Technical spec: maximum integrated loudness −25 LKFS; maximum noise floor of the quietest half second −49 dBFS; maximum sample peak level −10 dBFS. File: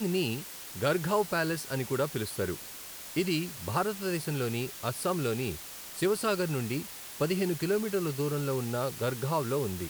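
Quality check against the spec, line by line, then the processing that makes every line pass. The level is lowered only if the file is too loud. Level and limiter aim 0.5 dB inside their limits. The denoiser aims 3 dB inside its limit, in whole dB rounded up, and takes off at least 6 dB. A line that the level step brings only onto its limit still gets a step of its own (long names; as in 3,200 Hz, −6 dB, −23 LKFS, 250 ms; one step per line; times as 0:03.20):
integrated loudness −31.5 LKFS: in spec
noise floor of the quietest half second −44 dBFS: out of spec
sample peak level −14.5 dBFS: in spec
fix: broadband denoise 8 dB, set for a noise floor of −44 dBFS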